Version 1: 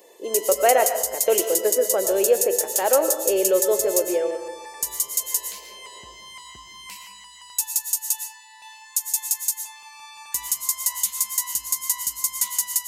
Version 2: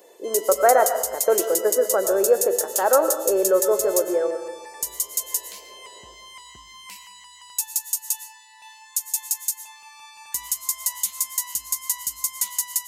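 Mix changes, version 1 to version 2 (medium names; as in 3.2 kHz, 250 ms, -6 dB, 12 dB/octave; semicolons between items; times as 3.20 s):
speech: add resonant high shelf 2.1 kHz -13.5 dB, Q 3; background: send -7.5 dB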